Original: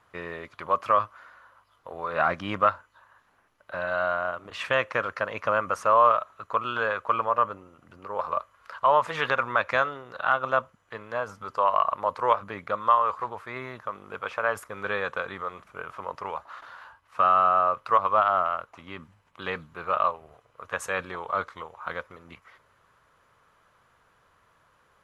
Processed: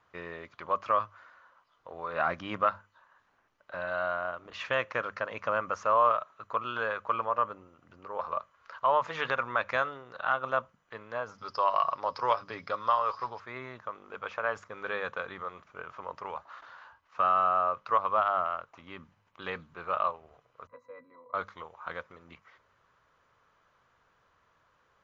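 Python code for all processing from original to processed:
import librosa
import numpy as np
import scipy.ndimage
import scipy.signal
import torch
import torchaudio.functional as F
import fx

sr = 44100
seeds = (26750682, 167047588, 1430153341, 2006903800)

y = fx.chain(x, sr, fx.lowpass_res(hz=5100.0, q=13.0),
    fx.comb(ms=7.2, depth=0.32), at=(11.38, 13.4))
y = fx.chain(y, sr, fx.highpass(hz=160.0, slope=24),
    fx.peak_eq(hz=3300.0, db=-5.5, octaves=0.91),
    fx.octave_resonator(note='B', decay_s=0.12), at=(20.67, 21.34))
y = scipy.signal.sosfilt(scipy.signal.butter(16, 7000.0, 'lowpass', fs=sr, output='sos'), y)
y = fx.hum_notches(y, sr, base_hz=50, count=4)
y = y * librosa.db_to_amplitude(-5.0)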